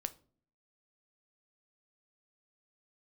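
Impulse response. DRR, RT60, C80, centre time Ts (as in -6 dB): 11.0 dB, no single decay rate, 24.5 dB, 3 ms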